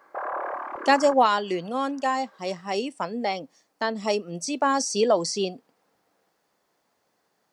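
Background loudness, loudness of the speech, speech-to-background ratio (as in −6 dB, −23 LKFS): −34.0 LKFS, −25.0 LKFS, 9.0 dB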